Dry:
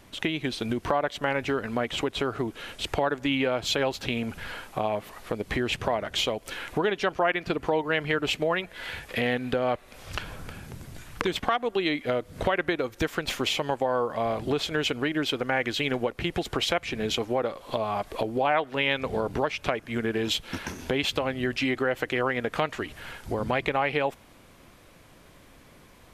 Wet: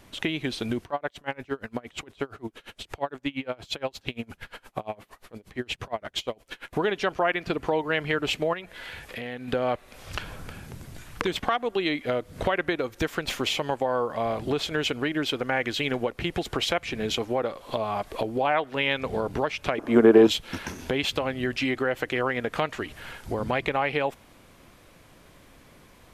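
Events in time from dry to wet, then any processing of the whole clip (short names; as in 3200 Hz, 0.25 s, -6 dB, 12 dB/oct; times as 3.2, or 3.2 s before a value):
0.83–6.73 dB-linear tremolo 8.6 Hz, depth 29 dB
8.53–9.48 compressor 2:1, threshold -38 dBFS
19.78–20.27 band shelf 550 Hz +14.5 dB 2.8 oct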